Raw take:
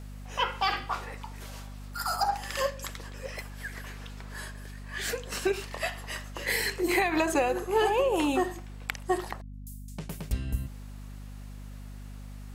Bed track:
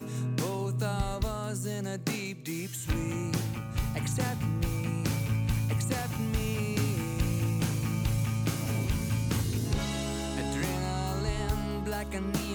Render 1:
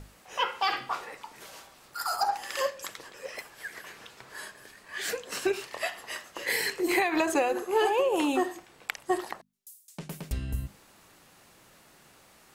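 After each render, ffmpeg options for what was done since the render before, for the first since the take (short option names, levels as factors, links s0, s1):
-af "bandreject=f=50:t=h:w=6,bandreject=f=100:t=h:w=6,bandreject=f=150:t=h:w=6,bandreject=f=200:t=h:w=6,bandreject=f=250:t=h:w=6"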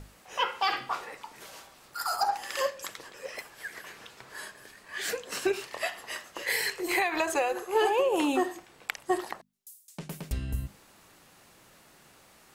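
-filter_complex "[0:a]asettb=1/sr,asplit=3[s0][s1][s2];[s0]atrim=end=6.424[s3];[s1]atrim=start=6.42:end=7.75,asetpts=PTS-STARTPTS,afade=t=in:d=0.004:c=qsin,afade=t=out:st=1.326:d=0.004:c=qsin,equalizer=f=250:w=1.5:g=-11.5[s4];[s2]atrim=start=7.746[s5];[s3][s4]acrossfade=d=0.004:c1=hsin:c2=qsin[s6];[s6][s5]acrossfade=d=0.004:c1=qsin:c2=hsin"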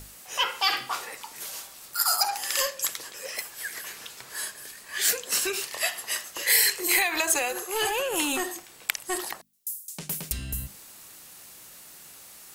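-filter_complex "[0:a]acrossover=split=1200[s0][s1];[s0]asoftclip=type=tanh:threshold=0.0376[s2];[s2][s1]amix=inputs=2:normalize=0,crystalizer=i=4:c=0"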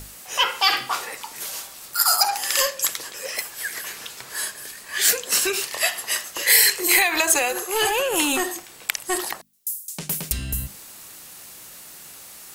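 -af "volume=1.88,alimiter=limit=0.794:level=0:latency=1"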